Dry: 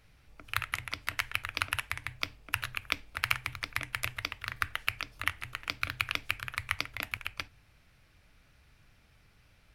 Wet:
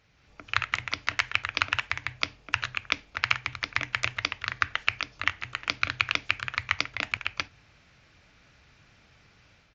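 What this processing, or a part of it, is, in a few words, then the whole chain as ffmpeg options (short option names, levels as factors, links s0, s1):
Bluetooth headset: -af "highpass=f=120:p=1,dynaudnorm=f=100:g=5:m=2.24,aresample=16000,aresample=44100" -ar 16000 -c:a sbc -b:a 64k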